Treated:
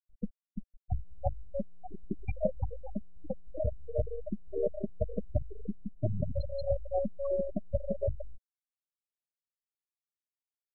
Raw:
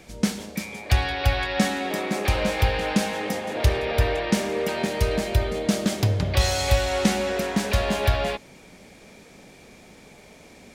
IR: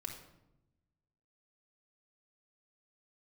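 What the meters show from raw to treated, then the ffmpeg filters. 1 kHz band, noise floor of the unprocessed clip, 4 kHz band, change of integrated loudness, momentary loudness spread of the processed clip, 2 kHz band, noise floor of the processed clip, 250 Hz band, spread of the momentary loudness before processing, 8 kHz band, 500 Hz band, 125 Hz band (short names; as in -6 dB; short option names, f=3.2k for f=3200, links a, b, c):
-19.5 dB, -49 dBFS, under -35 dB, -12.5 dB, 10 LU, under -30 dB, under -85 dBFS, -14.0 dB, 5 LU, under -40 dB, -8.5 dB, -12.5 dB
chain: -filter_complex "[0:a]asplit=2[a][b];[b]aecho=0:1:280:0.0794[c];[a][c]amix=inputs=2:normalize=0,alimiter=limit=-18dB:level=0:latency=1:release=454,aeval=exprs='0.126*(cos(1*acos(clip(val(0)/0.126,-1,1)))-cos(1*PI/2))+0.0282*(cos(3*acos(clip(val(0)/0.126,-1,1)))-cos(3*PI/2))+0.00251*(cos(7*acos(clip(val(0)/0.126,-1,1)))-cos(7*PI/2))+0.0178*(cos(8*acos(clip(val(0)/0.126,-1,1)))-cos(8*PI/2))':c=same,afftfilt=real='re*gte(hypot(re,im),0.112)':imag='im*gte(hypot(re,im),0.112)':win_size=1024:overlap=0.75,equalizer=f=620:w=2.9:g=12"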